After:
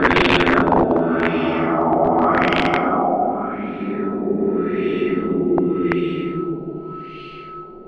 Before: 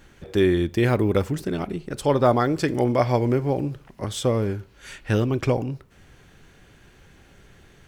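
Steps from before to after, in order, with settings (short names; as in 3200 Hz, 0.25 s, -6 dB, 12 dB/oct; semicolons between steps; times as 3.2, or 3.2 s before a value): resonant low shelf 180 Hz -10.5 dB, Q 1.5; Paulstretch 25×, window 0.10 s, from 1.53; whine 1300 Hz -47 dBFS; wrapped overs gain 18 dB; LFO low-pass sine 0.86 Hz 730–2800 Hz; gain +8.5 dB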